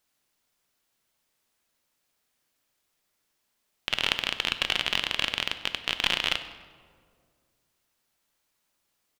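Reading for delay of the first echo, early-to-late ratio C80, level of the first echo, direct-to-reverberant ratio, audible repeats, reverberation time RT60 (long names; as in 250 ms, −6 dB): 97 ms, 12.5 dB, −19.5 dB, 9.0 dB, 2, 2.1 s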